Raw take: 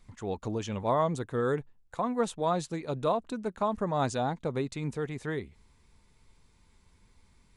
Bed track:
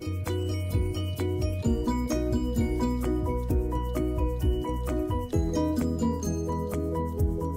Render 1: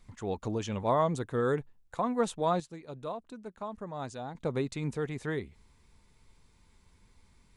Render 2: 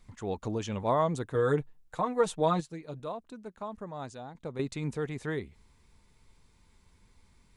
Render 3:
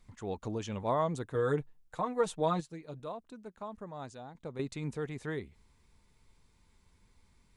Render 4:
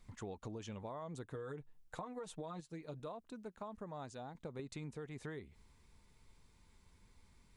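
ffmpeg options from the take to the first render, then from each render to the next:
-filter_complex "[0:a]asplit=3[s0][s1][s2];[s0]atrim=end=2.602[s3];[s1]atrim=start=2.598:end=4.352,asetpts=PTS-STARTPTS,volume=0.316[s4];[s2]atrim=start=4.348[s5];[s3][s4]acrossfade=d=0.004:c1=hsin:c2=hsin[s6];[s6][s5]acrossfade=d=0.004:c1=hsin:c2=hsin"
-filter_complex "[0:a]asettb=1/sr,asplit=3[s0][s1][s2];[s0]atrim=end=1.344[s3];[s1]atrim=start=1.34:end=3,asetpts=PTS-STARTPTS,afade=t=in:d=0.004:c=qsin,afade=t=out:st=1.656:d=0.004:c=qsin,aecho=1:1:6.5:0.65,atrim=end_sample=73206[s4];[s2]atrim=start=2.996[s5];[s3][s4]acrossfade=d=0.004:c1=hsin:c2=qsin[s6];[s6][s5]acrossfade=d=0.004:c1=qsin:c2=hsin,asplit=2[s7][s8];[s7]atrim=end=4.59,asetpts=PTS-STARTPTS,afade=t=out:st=3.8:d=0.79:silence=0.375837[s9];[s8]atrim=start=4.59,asetpts=PTS-STARTPTS,afade=t=in:d=0.004:c=hsin:silence=0.375837[s10];[s9][s10]concat=n=2:v=0:a=1"
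-af "volume=0.668"
-af "alimiter=level_in=1.33:limit=0.0631:level=0:latency=1:release=148,volume=0.75,acompressor=threshold=0.00794:ratio=12"

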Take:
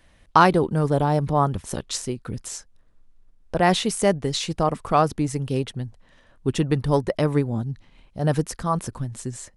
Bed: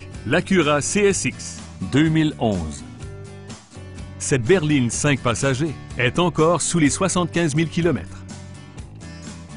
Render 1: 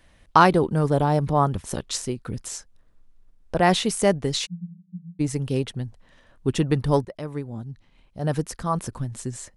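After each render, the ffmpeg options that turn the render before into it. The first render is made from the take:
-filter_complex "[0:a]asplit=3[s0][s1][s2];[s0]afade=t=out:st=4.45:d=0.02[s3];[s1]asuperpass=centerf=180:order=8:qfactor=7.2,afade=t=in:st=4.45:d=0.02,afade=t=out:st=5.19:d=0.02[s4];[s2]afade=t=in:st=5.19:d=0.02[s5];[s3][s4][s5]amix=inputs=3:normalize=0,asplit=2[s6][s7];[s6]atrim=end=7.05,asetpts=PTS-STARTPTS,afade=t=out:st=7.046:d=0.004:c=hsin:silence=0.188365[s8];[s7]atrim=start=7.05,asetpts=PTS-STARTPTS,afade=t=in:d=2.03:silence=0.188365[s9];[s8][s9]concat=n=2:v=0:a=1"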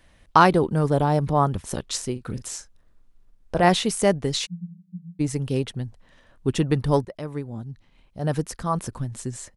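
-filter_complex "[0:a]asplit=3[s0][s1][s2];[s0]afade=t=out:st=2.15:d=0.02[s3];[s1]asplit=2[s4][s5];[s5]adelay=40,volume=0.316[s6];[s4][s6]amix=inputs=2:normalize=0,afade=t=in:st=2.15:d=0.02,afade=t=out:st=3.68:d=0.02[s7];[s2]afade=t=in:st=3.68:d=0.02[s8];[s3][s7][s8]amix=inputs=3:normalize=0"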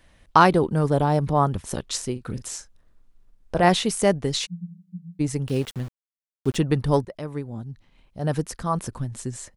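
-filter_complex "[0:a]asettb=1/sr,asplit=3[s0][s1][s2];[s0]atrim=end=5.484[s3];[s1]atrim=start=5.48:end=6.57,asetpts=PTS-STARTPTS,afade=t=in:d=0.004:c=qsin,afade=t=out:st=1.086:d=0.004:c=qsin,aeval=exprs='val(0)*gte(abs(val(0)),0.0141)':c=same[s4];[s2]atrim=start=6.566[s5];[s3][s4]acrossfade=d=0.004:c1=hsin:c2=qsin[s6];[s6][s5]acrossfade=d=0.004:c1=qsin:c2=hsin"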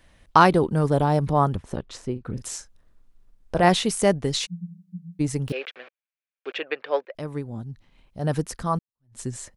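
-filter_complex "[0:a]asplit=3[s0][s1][s2];[s0]afade=t=out:st=1.55:d=0.02[s3];[s1]lowpass=f=1200:p=1,afade=t=in:st=1.55:d=0.02,afade=t=out:st=2.37:d=0.02[s4];[s2]afade=t=in:st=2.37:d=0.02[s5];[s3][s4][s5]amix=inputs=3:normalize=0,asettb=1/sr,asplit=3[s6][s7][s8];[s6]atrim=end=5.524[s9];[s7]atrim=start=5.52:end=7.15,asetpts=PTS-STARTPTS,afade=t=in:d=0.004:c=qsin,afade=t=out:st=1.626:d=0.004:c=qsin,highpass=f=490:w=0.5412,highpass=f=490:w=1.3066,equalizer=f=520:t=q:w=4:g=3,equalizer=f=920:t=q:w=4:g=-7,equalizer=f=1600:t=q:w=4:g=6,equalizer=f=2400:t=q:w=4:g=10,lowpass=f=3700:w=0.5412,lowpass=f=3700:w=1.3066[s10];[s8]atrim=start=7.146[s11];[s9][s10]acrossfade=d=0.004:c1=hsin:c2=qsin[s12];[s12][s11]acrossfade=d=0.004:c1=qsin:c2=hsin,asplit=2[s13][s14];[s13]atrim=end=8.79,asetpts=PTS-STARTPTS,afade=t=out:st=8.786:d=0.004:c=hsin[s15];[s14]atrim=start=8.79,asetpts=PTS-STARTPTS,afade=t=in:d=0.41:c=exp[s16];[s15][s16]concat=n=2:v=0:a=1"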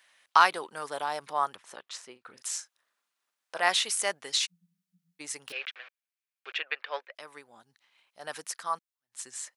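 -af "highpass=1200"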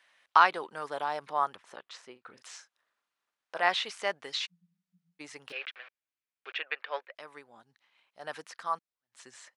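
-filter_complex "[0:a]aemphasis=mode=reproduction:type=50kf,acrossover=split=5400[s0][s1];[s1]acompressor=threshold=0.00158:ratio=4:attack=1:release=60[s2];[s0][s2]amix=inputs=2:normalize=0"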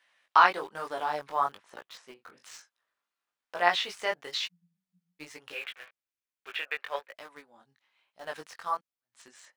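-filter_complex "[0:a]flanger=delay=17:depth=5.2:speed=1.1,asplit=2[s0][s1];[s1]aeval=exprs='val(0)*gte(abs(val(0)),0.00501)':c=same,volume=0.631[s2];[s0][s2]amix=inputs=2:normalize=0"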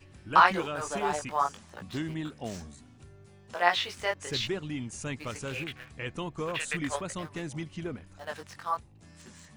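-filter_complex "[1:a]volume=0.133[s0];[0:a][s0]amix=inputs=2:normalize=0"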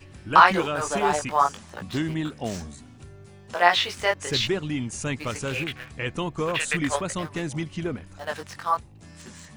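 -af "volume=2.24,alimiter=limit=0.794:level=0:latency=1"

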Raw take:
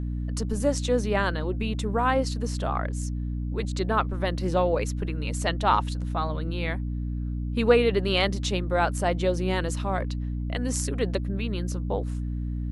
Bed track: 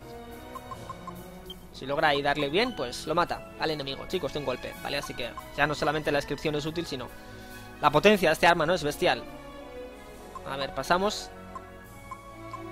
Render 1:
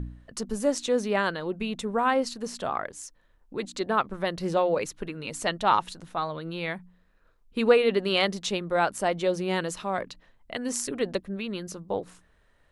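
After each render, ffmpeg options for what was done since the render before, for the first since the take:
-af "bandreject=f=60:t=h:w=4,bandreject=f=120:t=h:w=4,bandreject=f=180:t=h:w=4,bandreject=f=240:t=h:w=4,bandreject=f=300:t=h:w=4"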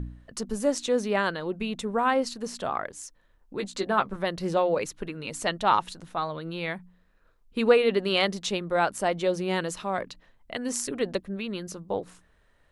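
-filter_complex "[0:a]asettb=1/sr,asplit=3[s0][s1][s2];[s0]atrim=end=3.574[s3];[s1]atrim=start=3.57:end=4.16,asetpts=PTS-STARTPTS,afade=t=in:d=0.004:c=qsin,afade=t=out:st=0.586:d=0.004:c=qsin,asplit=2[s4][s5];[s5]adelay=15,volume=0.501[s6];[s4][s6]amix=inputs=2:normalize=0,atrim=end_sample=26019[s7];[s2]atrim=start=4.156[s8];[s3][s7]acrossfade=d=0.004:c1=hsin:c2=qsin[s9];[s9][s8]acrossfade=d=0.004:c1=qsin:c2=hsin"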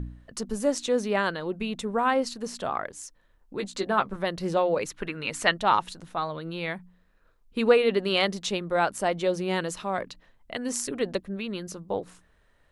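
-filter_complex "[0:a]asettb=1/sr,asplit=3[s0][s1][s2];[s0]atrim=end=4.904[s3];[s1]atrim=start=4.9:end=5.54,asetpts=PTS-STARTPTS,afade=t=in:d=0.004:c=qsin,afade=t=out:st=0.636:d=0.004:c=qsin,equalizer=f=1800:w=0.69:g=8.5[s4];[s2]atrim=start=5.536[s5];[s3][s4]acrossfade=d=0.004:c1=hsin:c2=qsin[s6];[s6][s5]acrossfade=d=0.004:c1=qsin:c2=hsin"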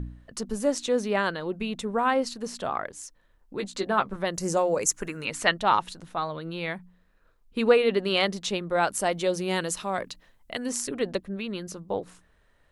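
-filter_complex "[0:a]asettb=1/sr,asplit=3[s0][s1][s2];[s0]atrim=end=4.344[s3];[s1]atrim=start=4.34:end=5.25,asetpts=PTS-STARTPTS,afade=t=in:d=0.004:c=qsin,afade=t=out:st=0.906:d=0.004:c=qsin,highshelf=f=5000:t=q:w=3:g=11[s4];[s2]atrim=start=5.246[s5];[s3][s4]acrossfade=d=0.004:c1=hsin:c2=qsin[s6];[s6][s5]acrossfade=d=0.004:c1=qsin:c2=hsin,asettb=1/sr,asplit=3[s7][s8][s9];[s7]atrim=end=8.834[s10];[s8]atrim=start=8.83:end=10.66,asetpts=PTS-STARTPTS,afade=t=in:d=0.004:c=qsin,afade=t=out:st=1.826:d=0.004:c=qsin,aemphasis=mode=production:type=cd[s11];[s9]atrim=start=10.656[s12];[s10][s11]acrossfade=d=0.004:c1=hsin:c2=qsin[s13];[s13][s12]acrossfade=d=0.004:c1=qsin:c2=hsin"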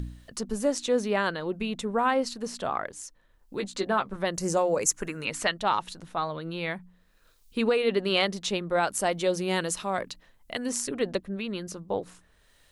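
-filter_complex "[0:a]acrossover=split=3200[s0][s1];[s0]alimiter=limit=0.188:level=0:latency=1:release=233[s2];[s1]acompressor=mode=upward:threshold=0.00282:ratio=2.5[s3];[s2][s3]amix=inputs=2:normalize=0"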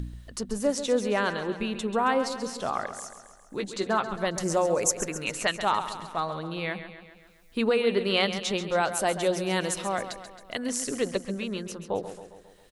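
-af "aecho=1:1:135|270|405|540|675|810:0.282|0.158|0.0884|0.0495|0.0277|0.0155"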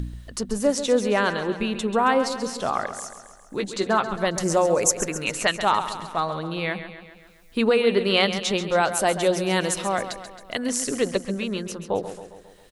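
-af "volume=1.68"

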